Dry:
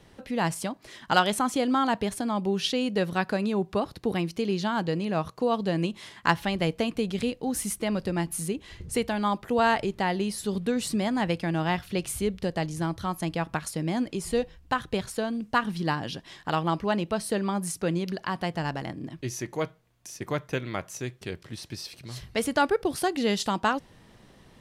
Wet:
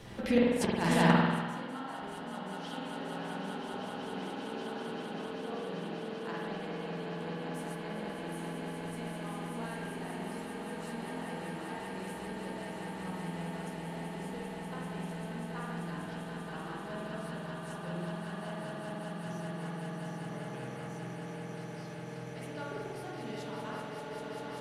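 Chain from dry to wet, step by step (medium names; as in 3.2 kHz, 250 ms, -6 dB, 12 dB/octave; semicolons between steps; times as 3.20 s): echo with a slow build-up 195 ms, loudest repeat 8, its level -6.5 dB; inverted gate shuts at -20 dBFS, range -28 dB; spring tank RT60 1.5 s, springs 47 ms, chirp 30 ms, DRR -4 dB; flange 0.16 Hz, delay 8.9 ms, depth 9.5 ms, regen -43%; trim +9 dB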